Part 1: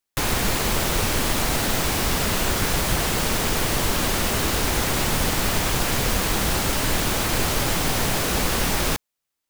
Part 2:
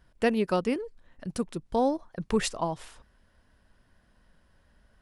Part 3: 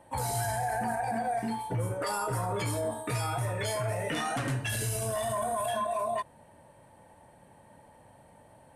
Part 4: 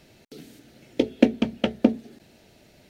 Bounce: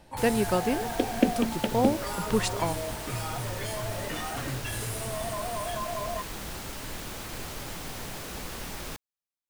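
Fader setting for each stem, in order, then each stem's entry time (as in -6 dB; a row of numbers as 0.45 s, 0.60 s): -15.5 dB, 0.0 dB, -3.5 dB, -5.5 dB; 0.00 s, 0.00 s, 0.00 s, 0.00 s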